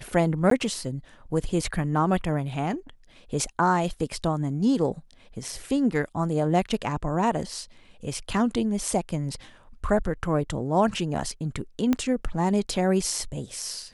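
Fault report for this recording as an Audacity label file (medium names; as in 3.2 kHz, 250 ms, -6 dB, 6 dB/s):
0.500000	0.510000	dropout 13 ms
11.930000	11.930000	pop -11 dBFS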